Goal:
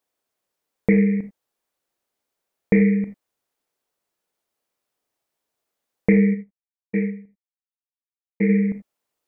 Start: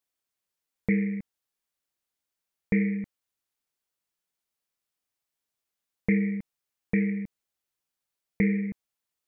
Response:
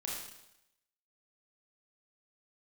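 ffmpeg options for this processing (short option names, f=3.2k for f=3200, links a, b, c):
-filter_complex "[0:a]asplit=3[a][b][c];[a]afade=t=out:st=6.33:d=0.02[d];[b]agate=range=-33dB:threshold=-18dB:ratio=3:detection=peak,afade=t=in:st=6.33:d=0.02,afade=t=out:st=8.48:d=0.02[e];[c]afade=t=in:st=8.48:d=0.02[f];[d][e][f]amix=inputs=3:normalize=0,equalizer=f=510:t=o:w=2.5:g=10,asplit=2[g][h];[1:a]atrim=start_sample=2205,atrim=end_sample=4410[i];[h][i]afir=irnorm=-1:irlink=0,volume=-4.5dB[j];[g][j]amix=inputs=2:normalize=0"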